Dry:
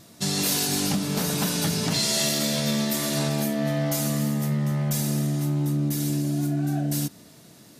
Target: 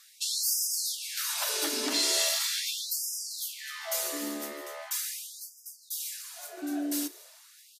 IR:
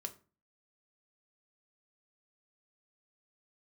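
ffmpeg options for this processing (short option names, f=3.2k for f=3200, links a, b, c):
-filter_complex "[0:a]equalizer=f=760:w=4:g=-6,bandreject=f=480:w=12,asplit=2[a][b];[b]aecho=0:1:1151:0.141[c];[a][c]amix=inputs=2:normalize=0,afftfilt=real='re*gte(b*sr/1024,230*pow(4900/230,0.5+0.5*sin(2*PI*0.4*pts/sr)))':imag='im*gte(b*sr/1024,230*pow(4900/230,0.5+0.5*sin(2*PI*0.4*pts/sr)))':win_size=1024:overlap=0.75,volume=-2dB"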